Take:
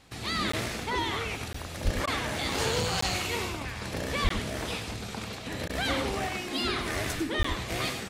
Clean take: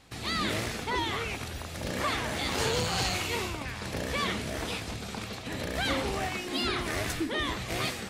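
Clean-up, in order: 1.84–1.96 HPF 140 Hz 24 dB/oct; 4.23–4.35 HPF 140 Hz 24 dB/oct; 7.38–7.5 HPF 140 Hz 24 dB/oct; interpolate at 0.52/1.53/3.01/4.29/7.43, 14 ms; interpolate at 2.06/5.68, 12 ms; inverse comb 99 ms -9.5 dB

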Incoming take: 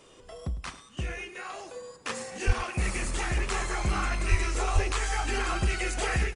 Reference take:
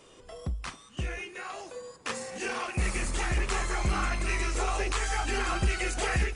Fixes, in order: 2.46–2.58 HPF 140 Hz 24 dB/oct; 4.3–4.42 HPF 140 Hz 24 dB/oct; 4.74–4.86 HPF 140 Hz 24 dB/oct; inverse comb 0.104 s -15.5 dB

